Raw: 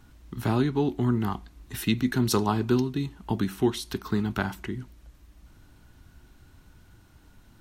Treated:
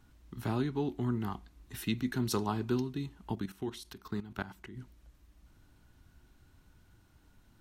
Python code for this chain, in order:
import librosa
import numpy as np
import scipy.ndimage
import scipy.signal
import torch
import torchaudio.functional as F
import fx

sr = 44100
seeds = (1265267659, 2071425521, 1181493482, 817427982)

y = fx.level_steps(x, sr, step_db=13, at=(3.35, 4.77))
y = y * librosa.db_to_amplitude(-8.0)